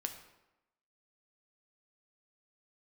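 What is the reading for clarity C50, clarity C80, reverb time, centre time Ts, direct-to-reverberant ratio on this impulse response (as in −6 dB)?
9.0 dB, 11.0 dB, 0.95 s, 16 ms, 5.0 dB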